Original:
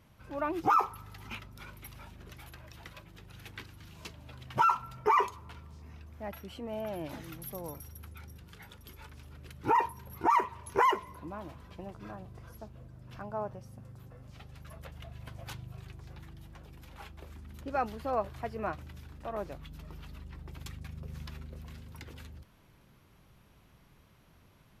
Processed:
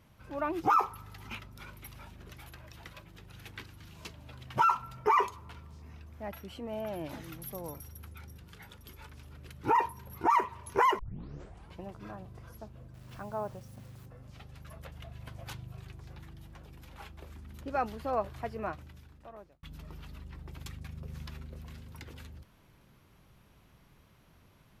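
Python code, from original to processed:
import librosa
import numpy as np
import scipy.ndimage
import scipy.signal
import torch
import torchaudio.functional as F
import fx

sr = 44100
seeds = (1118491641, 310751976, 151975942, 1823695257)

y = fx.quant_dither(x, sr, seeds[0], bits=10, dither='none', at=(12.94, 14.06))
y = fx.edit(y, sr, fx.tape_start(start_s=10.99, length_s=0.79),
    fx.fade_out_span(start_s=18.49, length_s=1.14), tone=tone)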